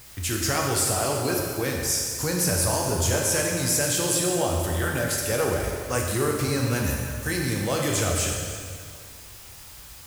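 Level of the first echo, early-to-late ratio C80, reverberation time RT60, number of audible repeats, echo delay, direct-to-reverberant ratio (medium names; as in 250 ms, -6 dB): no echo, 2.5 dB, 2.1 s, no echo, no echo, -1.0 dB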